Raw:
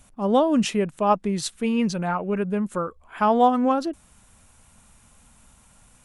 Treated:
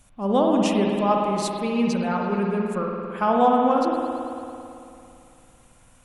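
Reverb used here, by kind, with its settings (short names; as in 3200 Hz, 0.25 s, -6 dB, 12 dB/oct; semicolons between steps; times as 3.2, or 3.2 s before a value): spring tank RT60 2.7 s, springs 55 ms, chirp 60 ms, DRR -0.5 dB; gain -2.5 dB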